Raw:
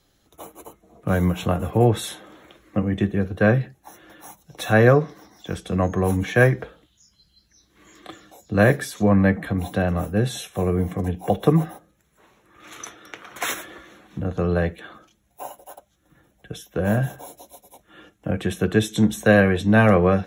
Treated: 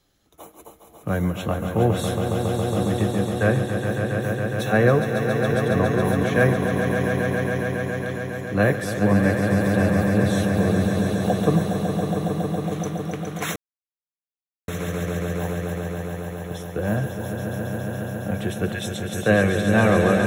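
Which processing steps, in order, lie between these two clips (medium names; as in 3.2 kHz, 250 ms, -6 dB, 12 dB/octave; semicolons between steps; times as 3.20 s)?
18.72–19.18 s: steep high-pass 1.5 kHz; echo with a slow build-up 138 ms, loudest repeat 5, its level -7.5 dB; 13.56–14.68 s: mute; trim -3 dB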